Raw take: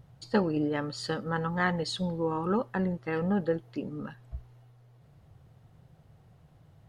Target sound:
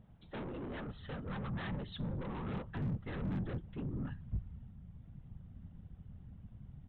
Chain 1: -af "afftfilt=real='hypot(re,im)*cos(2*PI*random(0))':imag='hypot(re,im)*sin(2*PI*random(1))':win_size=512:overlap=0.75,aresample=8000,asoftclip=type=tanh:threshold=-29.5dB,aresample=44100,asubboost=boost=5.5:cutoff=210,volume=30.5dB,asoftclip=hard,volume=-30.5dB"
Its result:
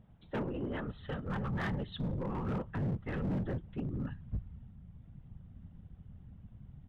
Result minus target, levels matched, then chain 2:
soft clip: distortion -8 dB
-af "afftfilt=real='hypot(re,im)*cos(2*PI*random(0))':imag='hypot(re,im)*sin(2*PI*random(1))':win_size=512:overlap=0.75,aresample=8000,asoftclip=type=tanh:threshold=-40.5dB,aresample=44100,asubboost=boost=5.5:cutoff=210,volume=30.5dB,asoftclip=hard,volume=-30.5dB"

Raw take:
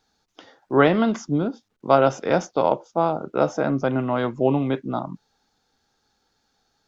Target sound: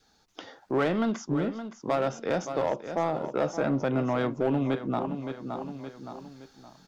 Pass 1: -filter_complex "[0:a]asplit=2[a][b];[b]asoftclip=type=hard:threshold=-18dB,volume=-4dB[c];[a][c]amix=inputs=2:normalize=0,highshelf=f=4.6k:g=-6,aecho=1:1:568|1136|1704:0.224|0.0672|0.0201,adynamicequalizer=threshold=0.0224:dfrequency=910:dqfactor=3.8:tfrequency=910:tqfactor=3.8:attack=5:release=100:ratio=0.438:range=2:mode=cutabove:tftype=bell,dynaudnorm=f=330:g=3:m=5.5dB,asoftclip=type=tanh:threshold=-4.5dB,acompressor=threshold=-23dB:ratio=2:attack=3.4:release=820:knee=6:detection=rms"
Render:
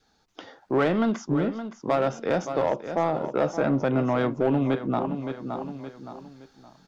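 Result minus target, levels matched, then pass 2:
8000 Hz band -4.0 dB; compressor: peak gain reduction -3 dB
-filter_complex "[0:a]asplit=2[a][b];[b]asoftclip=type=hard:threshold=-18dB,volume=-4dB[c];[a][c]amix=inputs=2:normalize=0,aecho=1:1:568|1136|1704:0.224|0.0672|0.0201,adynamicequalizer=threshold=0.0224:dfrequency=910:dqfactor=3.8:tfrequency=910:tqfactor=3.8:attack=5:release=100:ratio=0.438:range=2:mode=cutabove:tftype=bell,dynaudnorm=f=330:g=3:m=5.5dB,asoftclip=type=tanh:threshold=-4.5dB,acompressor=threshold=-29.5dB:ratio=2:attack=3.4:release=820:knee=6:detection=rms"

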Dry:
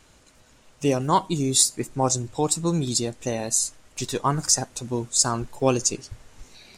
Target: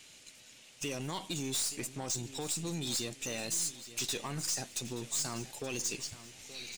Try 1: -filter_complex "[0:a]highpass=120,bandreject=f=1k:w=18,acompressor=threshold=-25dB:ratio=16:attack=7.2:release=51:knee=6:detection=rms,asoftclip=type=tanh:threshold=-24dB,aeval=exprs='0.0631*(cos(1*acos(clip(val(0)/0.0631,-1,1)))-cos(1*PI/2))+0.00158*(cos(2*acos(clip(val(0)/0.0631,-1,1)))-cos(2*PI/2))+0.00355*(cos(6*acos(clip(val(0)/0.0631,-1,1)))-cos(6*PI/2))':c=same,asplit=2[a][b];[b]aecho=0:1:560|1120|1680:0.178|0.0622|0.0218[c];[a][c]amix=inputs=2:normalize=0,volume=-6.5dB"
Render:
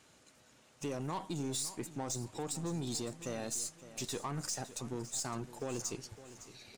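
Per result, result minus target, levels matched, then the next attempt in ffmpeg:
echo 0.316 s early; 4000 Hz band -3.5 dB
-filter_complex "[0:a]highpass=120,bandreject=f=1k:w=18,acompressor=threshold=-25dB:ratio=16:attack=7.2:release=51:knee=6:detection=rms,asoftclip=type=tanh:threshold=-24dB,aeval=exprs='0.0631*(cos(1*acos(clip(val(0)/0.0631,-1,1)))-cos(1*PI/2))+0.00158*(cos(2*acos(clip(val(0)/0.0631,-1,1)))-cos(2*PI/2))+0.00355*(cos(6*acos(clip(val(0)/0.0631,-1,1)))-cos(6*PI/2))':c=same,asplit=2[a][b];[b]aecho=0:1:876|1752|2628:0.178|0.0622|0.0218[c];[a][c]amix=inputs=2:normalize=0,volume=-6.5dB"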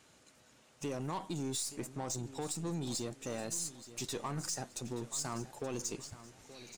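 4000 Hz band -3.5 dB
-filter_complex "[0:a]highpass=120,bandreject=f=1k:w=18,acompressor=threshold=-25dB:ratio=16:attack=7.2:release=51:knee=6:detection=rms,highshelf=f=1.8k:t=q:w=1.5:g=10,asoftclip=type=tanh:threshold=-24dB,aeval=exprs='0.0631*(cos(1*acos(clip(val(0)/0.0631,-1,1)))-cos(1*PI/2))+0.00158*(cos(2*acos(clip(val(0)/0.0631,-1,1)))-cos(2*PI/2))+0.00355*(cos(6*acos(clip(val(0)/0.0631,-1,1)))-cos(6*PI/2))':c=same,asplit=2[a][b];[b]aecho=0:1:876|1752|2628:0.178|0.0622|0.0218[c];[a][c]amix=inputs=2:normalize=0,volume=-6.5dB"

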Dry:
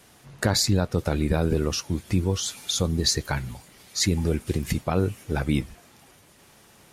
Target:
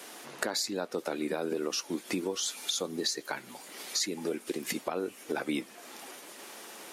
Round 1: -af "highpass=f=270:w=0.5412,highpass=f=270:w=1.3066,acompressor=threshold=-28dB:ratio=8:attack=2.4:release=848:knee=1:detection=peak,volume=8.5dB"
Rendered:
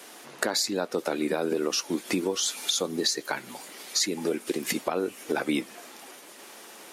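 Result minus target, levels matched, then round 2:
compressor: peak gain reduction -5 dB
-af "highpass=f=270:w=0.5412,highpass=f=270:w=1.3066,acompressor=threshold=-34dB:ratio=8:attack=2.4:release=848:knee=1:detection=peak,volume=8.5dB"

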